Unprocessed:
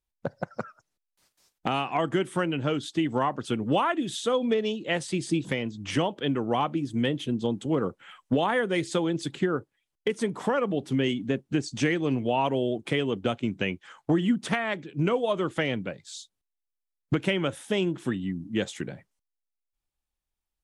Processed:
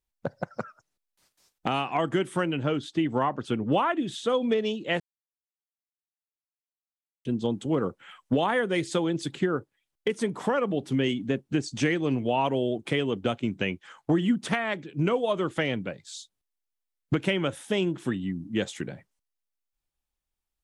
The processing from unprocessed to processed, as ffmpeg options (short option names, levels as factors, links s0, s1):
-filter_complex "[0:a]asettb=1/sr,asplit=3[s0][s1][s2];[s0]atrim=end=2.634[s3];[s1]atrim=start=2.63:end=4.29,asetpts=PTS-STARTPTS,afade=t=in:d=0.004:c=qsin,afade=t=out:st=1.656:d=0.004:c=qsin,aemphasis=mode=reproduction:type=cd[s4];[s2]atrim=start=4.286[s5];[s3][s4]acrossfade=d=0.004:c1=hsin:c2=qsin[s6];[s6][s5]acrossfade=d=0.004:c1=qsin:c2=hsin,asplit=3[s7][s8][s9];[s7]atrim=end=5,asetpts=PTS-STARTPTS,afade=t=out:st=4.996:d=0.004:c=hsin[s10];[s8]atrim=start=5:end=7.25,asetpts=PTS-STARTPTS,volume=0[s11];[s9]atrim=start=7.25,asetpts=PTS-STARTPTS,afade=t=in:d=0.004:c=hsin[s12];[s10][s11][s12]concat=n=3:v=0:a=1"